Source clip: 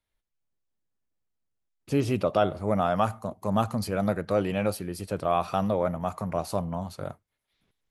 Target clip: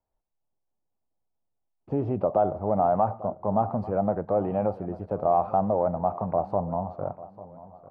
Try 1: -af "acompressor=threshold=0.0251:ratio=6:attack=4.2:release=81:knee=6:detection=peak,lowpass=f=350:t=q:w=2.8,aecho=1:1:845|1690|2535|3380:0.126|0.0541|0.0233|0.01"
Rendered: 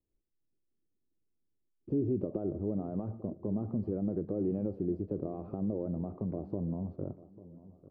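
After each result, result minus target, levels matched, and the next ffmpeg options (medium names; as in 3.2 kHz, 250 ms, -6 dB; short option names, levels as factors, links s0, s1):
1 kHz band -18.0 dB; compression: peak gain reduction +8 dB
-af "acompressor=threshold=0.0251:ratio=6:attack=4.2:release=81:knee=6:detection=peak,lowpass=f=800:t=q:w=2.8,aecho=1:1:845|1690|2535|3380:0.126|0.0541|0.0233|0.01"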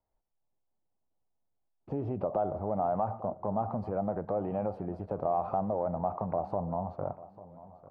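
compression: peak gain reduction +8 dB
-af "acompressor=threshold=0.075:ratio=6:attack=4.2:release=81:knee=6:detection=peak,lowpass=f=800:t=q:w=2.8,aecho=1:1:845|1690|2535|3380:0.126|0.0541|0.0233|0.01"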